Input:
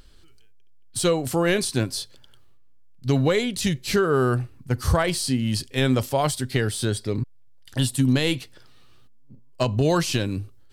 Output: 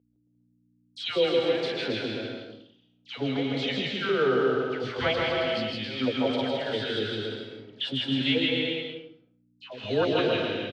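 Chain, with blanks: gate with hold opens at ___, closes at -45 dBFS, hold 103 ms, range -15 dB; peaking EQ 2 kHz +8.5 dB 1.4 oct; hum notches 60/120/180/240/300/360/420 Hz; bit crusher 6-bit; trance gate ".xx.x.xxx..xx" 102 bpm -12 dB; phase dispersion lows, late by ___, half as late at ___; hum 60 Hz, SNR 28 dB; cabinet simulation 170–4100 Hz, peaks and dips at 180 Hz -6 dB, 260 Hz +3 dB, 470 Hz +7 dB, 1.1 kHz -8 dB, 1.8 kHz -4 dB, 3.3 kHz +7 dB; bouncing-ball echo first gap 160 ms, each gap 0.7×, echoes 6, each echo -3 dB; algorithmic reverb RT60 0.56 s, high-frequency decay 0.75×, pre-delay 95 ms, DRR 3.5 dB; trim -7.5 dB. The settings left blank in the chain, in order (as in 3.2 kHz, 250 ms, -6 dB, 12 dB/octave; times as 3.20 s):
-36 dBFS, 133 ms, 1.1 kHz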